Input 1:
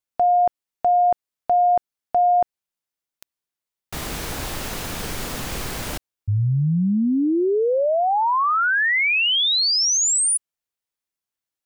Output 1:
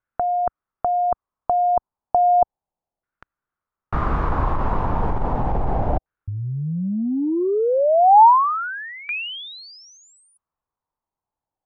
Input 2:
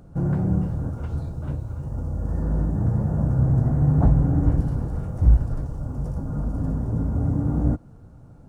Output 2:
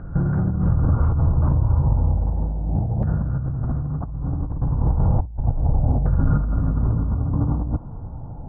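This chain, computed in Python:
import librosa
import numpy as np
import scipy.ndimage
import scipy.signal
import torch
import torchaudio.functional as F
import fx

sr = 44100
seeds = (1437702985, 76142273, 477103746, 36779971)

y = fx.low_shelf(x, sr, hz=130.0, db=11.5)
y = fx.over_compress(y, sr, threshold_db=-21.0, ratio=-1.0)
y = fx.filter_lfo_lowpass(y, sr, shape='saw_down', hz=0.33, low_hz=730.0, high_hz=1500.0, q=3.9)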